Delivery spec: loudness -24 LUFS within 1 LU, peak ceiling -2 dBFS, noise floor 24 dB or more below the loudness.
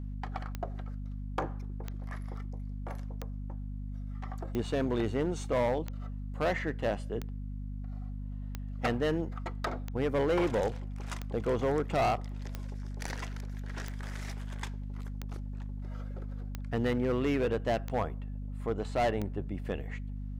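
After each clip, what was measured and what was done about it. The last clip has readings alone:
clicks 15; hum 50 Hz; harmonics up to 250 Hz; hum level -36 dBFS; loudness -34.5 LUFS; peak -20.5 dBFS; loudness target -24.0 LUFS
-> de-click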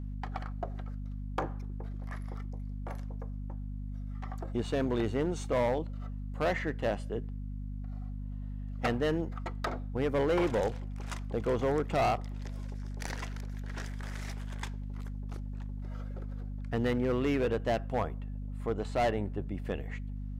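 clicks 0; hum 50 Hz; harmonics up to 250 Hz; hum level -36 dBFS
-> de-hum 50 Hz, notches 5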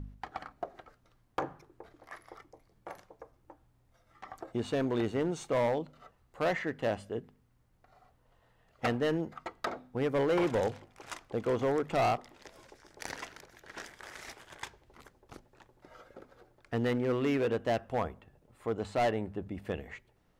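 hum none; loudness -33.0 LUFS; peak -22.0 dBFS; loudness target -24.0 LUFS
-> gain +9 dB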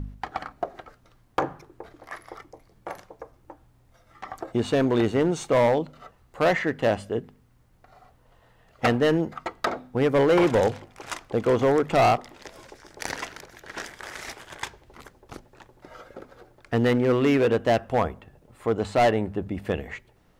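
loudness -24.0 LUFS; peak -13.0 dBFS; noise floor -60 dBFS

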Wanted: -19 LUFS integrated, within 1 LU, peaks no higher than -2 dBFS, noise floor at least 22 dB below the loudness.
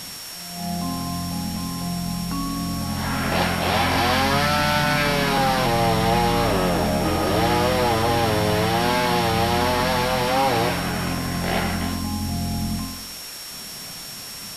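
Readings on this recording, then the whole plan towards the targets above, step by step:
steady tone 5500 Hz; tone level -37 dBFS; noise floor -35 dBFS; noise floor target -44 dBFS; loudness -21.5 LUFS; peak -8.5 dBFS; loudness target -19.0 LUFS
-> notch 5500 Hz, Q 30; noise print and reduce 9 dB; gain +2.5 dB

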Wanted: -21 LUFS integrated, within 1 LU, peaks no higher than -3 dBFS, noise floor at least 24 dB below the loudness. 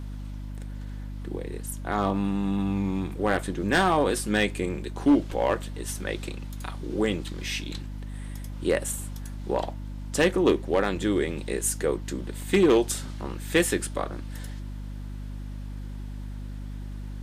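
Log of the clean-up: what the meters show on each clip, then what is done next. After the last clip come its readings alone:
clipped 0.3%; flat tops at -13.5 dBFS; hum 50 Hz; harmonics up to 250 Hz; hum level -33 dBFS; loudness -27.0 LUFS; peak -13.5 dBFS; loudness target -21.0 LUFS
-> clip repair -13.5 dBFS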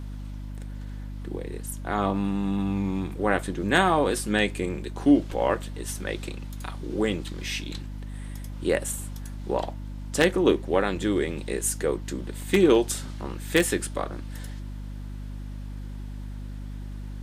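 clipped 0.0%; hum 50 Hz; harmonics up to 250 Hz; hum level -33 dBFS
-> notches 50/100/150/200/250 Hz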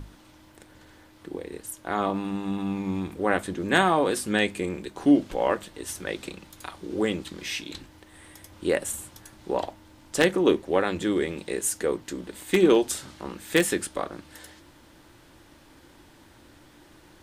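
hum none; loudness -26.5 LUFS; peak -4.0 dBFS; loudness target -21.0 LUFS
-> gain +5.5 dB; limiter -3 dBFS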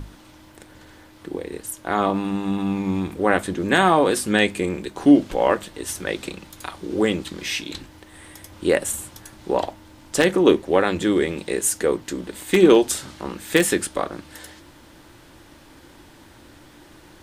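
loudness -21.0 LUFS; peak -3.0 dBFS; noise floor -49 dBFS

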